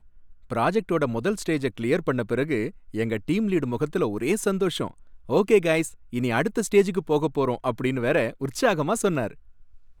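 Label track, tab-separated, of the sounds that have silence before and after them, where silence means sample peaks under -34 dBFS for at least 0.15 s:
0.500000	2.700000	sound
2.940000	4.910000	sound
5.290000	5.890000	sound
6.130000	9.310000	sound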